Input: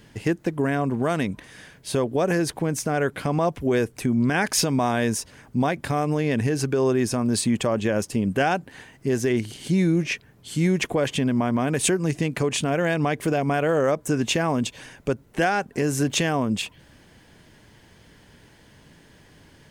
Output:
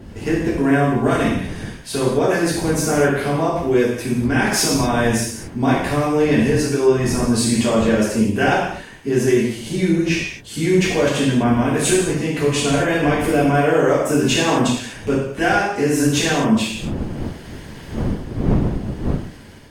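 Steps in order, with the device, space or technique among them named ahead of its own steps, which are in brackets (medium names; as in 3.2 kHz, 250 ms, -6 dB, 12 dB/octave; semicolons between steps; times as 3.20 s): gated-style reverb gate 280 ms falling, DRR -8 dB; smartphone video outdoors (wind noise -28 dBFS; level rider; trim -4 dB; AAC 64 kbps 48 kHz)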